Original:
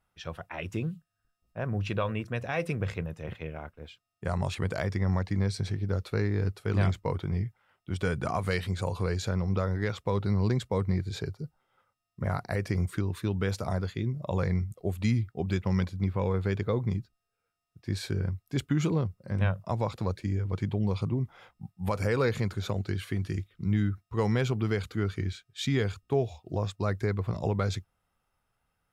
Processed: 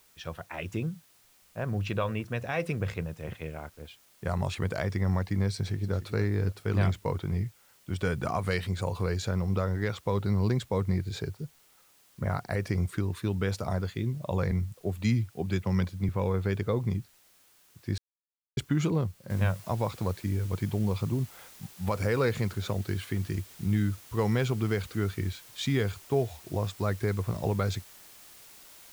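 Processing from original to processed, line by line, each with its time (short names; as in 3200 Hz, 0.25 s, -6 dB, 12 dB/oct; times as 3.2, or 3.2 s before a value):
5.55–5.96 echo throw 0.28 s, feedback 40%, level -14 dB
14.51–16.09 three-band expander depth 40%
17.98–18.57 mute
19.3 noise floor step -62 dB -52 dB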